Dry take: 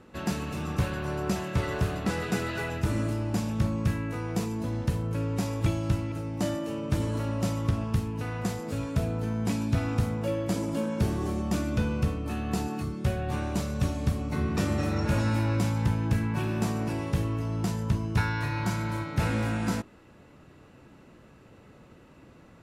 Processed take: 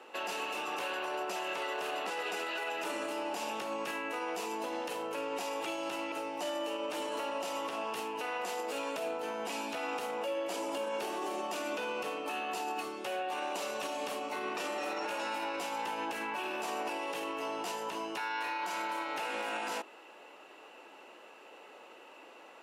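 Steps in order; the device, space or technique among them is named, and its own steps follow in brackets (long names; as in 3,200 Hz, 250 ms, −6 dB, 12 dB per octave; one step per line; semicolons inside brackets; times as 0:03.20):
laptop speaker (high-pass filter 390 Hz 24 dB per octave; parametric band 840 Hz +7 dB 0.5 octaves; parametric band 2,800 Hz +9.5 dB 0.34 octaves; brickwall limiter −30.5 dBFS, peak gain reduction 13.5 dB)
level +2.5 dB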